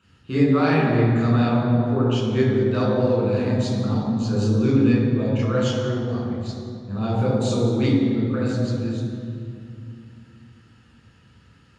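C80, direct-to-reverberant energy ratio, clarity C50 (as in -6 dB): 1.0 dB, -6.0 dB, -1.0 dB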